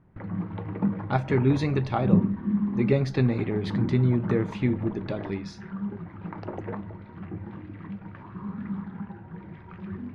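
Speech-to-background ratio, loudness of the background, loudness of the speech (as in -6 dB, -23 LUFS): 6.0 dB, -32.5 LUFS, -26.5 LUFS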